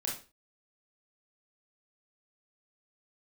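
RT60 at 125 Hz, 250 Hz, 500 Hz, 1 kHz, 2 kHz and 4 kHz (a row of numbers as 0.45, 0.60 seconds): 0.40, 0.35, 0.35, 0.35, 0.30, 0.30 seconds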